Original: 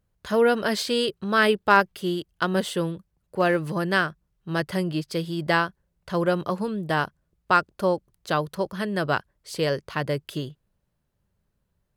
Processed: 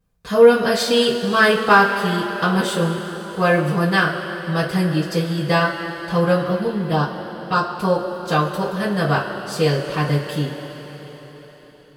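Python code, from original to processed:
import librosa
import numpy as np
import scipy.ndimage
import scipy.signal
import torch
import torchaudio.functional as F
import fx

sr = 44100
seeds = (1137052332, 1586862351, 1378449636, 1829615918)

y = fx.env_phaser(x, sr, low_hz=600.0, high_hz=2200.0, full_db=-19.5, at=(6.42, 7.69))
y = fx.rev_double_slope(y, sr, seeds[0], early_s=0.2, late_s=4.7, knee_db=-20, drr_db=-9.5)
y = y * librosa.db_to_amplitude(-4.0)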